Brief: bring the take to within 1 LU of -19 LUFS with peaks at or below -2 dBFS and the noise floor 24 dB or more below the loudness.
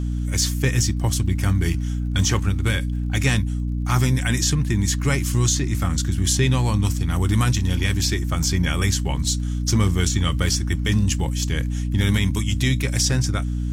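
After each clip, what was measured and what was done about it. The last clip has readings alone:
ticks 49/s; hum 60 Hz; harmonics up to 300 Hz; hum level -21 dBFS; loudness -21.5 LUFS; peak -6.5 dBFS; loudness target -19.0 LUFS
-> de-click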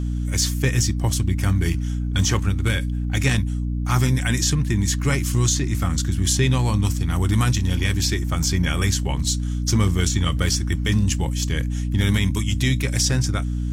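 ticks 0.29/s; hum 60 Hz; harmonics up to 300 Hz; hum level -21 dBFS
-> notches 60/120/180/240/300 Hz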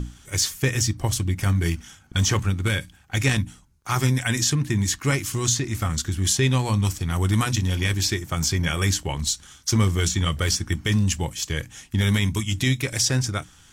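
hum none; loudness -23.5 LUFS; peak -8.0 dBFS; loudness target -19.0 LUFS
-> gain +4.5 dB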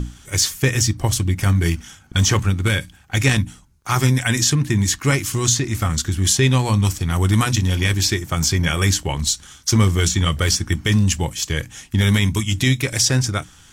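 loudness -19.0 LUFS; peak -3.5 dBFS; noise floor -48 dBFS

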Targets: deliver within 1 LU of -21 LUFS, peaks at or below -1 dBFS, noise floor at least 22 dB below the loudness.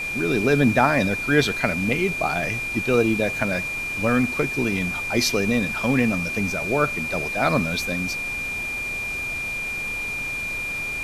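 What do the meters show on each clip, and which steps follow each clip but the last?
steady tone 2400 Hz; tone level -26 dBFS; noise floor -29 dBFS; noise floor target -45 dBFS; loudness -22.5 LUFS; peak -3.5 dBFS; loudness target -21.0 LUFS
-> notch 2400 Hz, Q 30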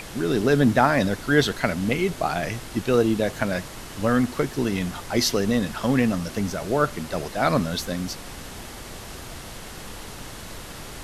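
steady tone none; noise floor -39 dBFS; noise floor target -46 dBFS
-> noise print and reduce 7 dB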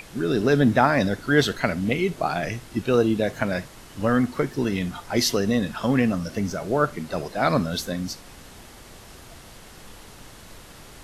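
noise floor -46 dBFS; loudness -23.5 LUFS; peak -4.0 dBFS; loudness target -21.0 LUFS
-> gain +2.5 dB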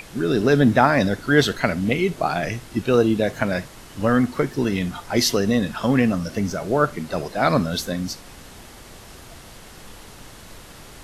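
loudness -21.0 LUFS; peak -1.5 dBFS; noise floor -43 dBFS

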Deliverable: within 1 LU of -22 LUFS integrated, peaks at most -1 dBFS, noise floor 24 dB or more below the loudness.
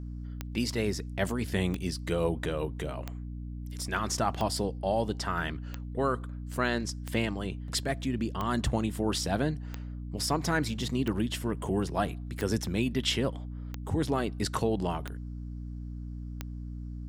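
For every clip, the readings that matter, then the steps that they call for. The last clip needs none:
clicks 13; hum 60 Hz; harmonics up to 300 Hz; hum level -36 dBFS; loudness -32.0 LUFS; peak -13.5 dBFS; loudness target -22.0 LUFS
-> de-click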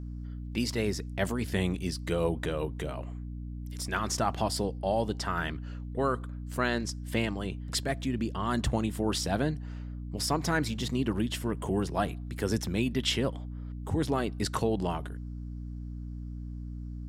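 clicks 0; hum 60 Hz; harmonics up to 300 Hz; hum level -36 dBFS
-> de-hum 60 Hz, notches 5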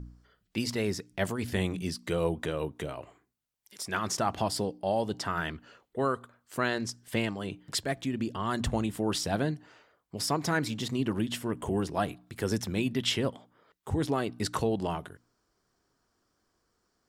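hum none; loudness -32.0 LUFS; peak -13.5 dBFS; loudness target -22.0 LUFS
-> gain +10 dB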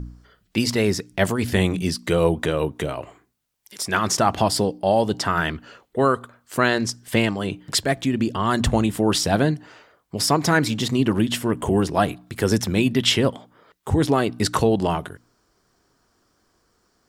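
loudness -22.0 LUFS; peak -3.5 dBFS; noise floor -67 dBFS

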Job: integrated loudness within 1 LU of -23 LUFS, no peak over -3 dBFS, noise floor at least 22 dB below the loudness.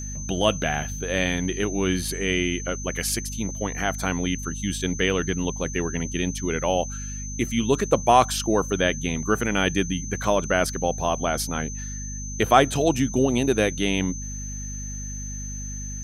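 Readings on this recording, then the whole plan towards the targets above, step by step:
hum 50 Hz; harmonics up to 250 Hz; hum level -32 dBFS; steady tone 6200 Hz; tone level -35 dBFS; loudness -24.5 LUFS; peak -3.0 dBFS; loudness target -23.0 LUFS
-> de-hum 50 Hz, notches 5; notch 6200 Hz, Q 30; gain +1.5 dB; limiter -3 dBFS

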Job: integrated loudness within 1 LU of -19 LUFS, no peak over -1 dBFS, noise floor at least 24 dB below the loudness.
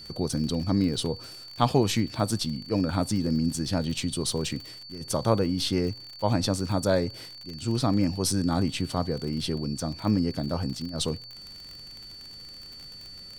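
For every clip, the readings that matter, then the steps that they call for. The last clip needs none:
ticks 44/s; steady tone 4500 Hz; tone level -42 dBFS; loudness -27.5 LUFS; peak -6.5 dBFS; loudness target -19.0 LUFS
-> de-click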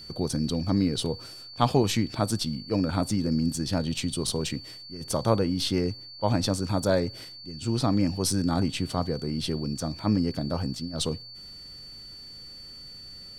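ticks 0.37/s; steady tone 4500 Hz; tone level -42 dBFS
-> notch 4500 Hz, Q 30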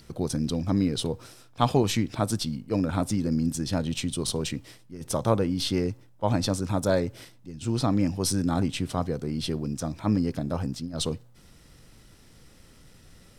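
steady tone none; loudness -27.5 LUFS; peak -6.5 dBFS; loudness target -19.0 LUFS
-> gain +8.5 dB; limiter -1 dBFS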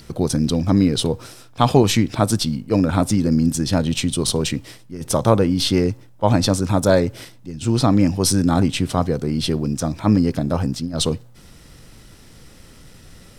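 loudness -19.5 LUFS; peak -1.0 dBFS; noise floor -46 dBFS

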